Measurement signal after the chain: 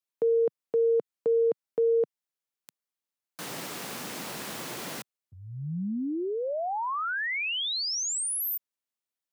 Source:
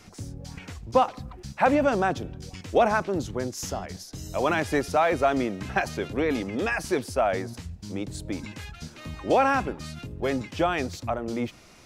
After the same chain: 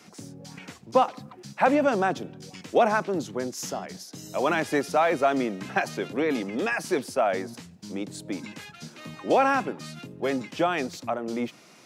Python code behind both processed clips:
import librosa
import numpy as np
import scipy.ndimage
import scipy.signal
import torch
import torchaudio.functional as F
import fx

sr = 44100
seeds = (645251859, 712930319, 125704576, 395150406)

y = scipy.signal.sosfilt(scipy.signal.butter(4, 150.0, 'highpass', fs=sr, output='sos'), x)